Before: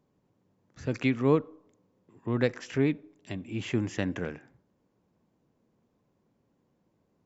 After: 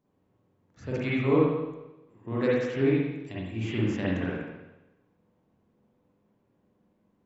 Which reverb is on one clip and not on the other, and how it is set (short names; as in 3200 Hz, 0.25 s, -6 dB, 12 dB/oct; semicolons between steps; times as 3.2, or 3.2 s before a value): spring tank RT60 1 s, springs 44/54 ms, chirp 40 ms, DRR -7.5 dB; gain -6 dB